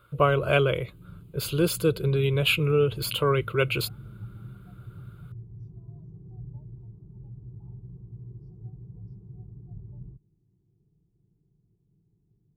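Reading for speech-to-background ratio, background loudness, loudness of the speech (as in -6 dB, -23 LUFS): 20.0 dB, -44.5 LUFS, -24.5 LUFS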